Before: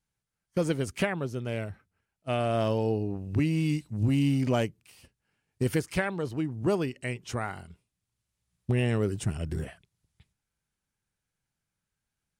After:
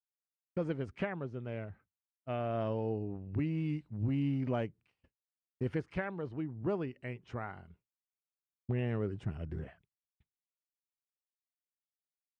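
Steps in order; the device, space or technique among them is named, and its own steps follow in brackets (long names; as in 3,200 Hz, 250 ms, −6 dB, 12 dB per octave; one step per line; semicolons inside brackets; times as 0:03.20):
hearing-loss simulation (low-pass filter 2,100 Hz 12 dB per octave; downward expander −51 dBFS)
level −7.5 dB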